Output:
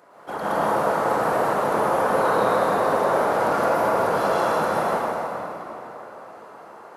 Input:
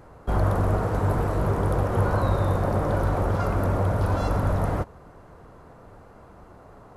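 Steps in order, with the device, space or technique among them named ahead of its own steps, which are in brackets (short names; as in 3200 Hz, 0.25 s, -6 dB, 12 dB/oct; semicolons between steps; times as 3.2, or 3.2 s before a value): whispering ghost (whisperiser; HPF 470 Hz 12 dB/oct; reverb RT60 3.5 s, pre-delay 0.107 s, DRR -8.5 dB)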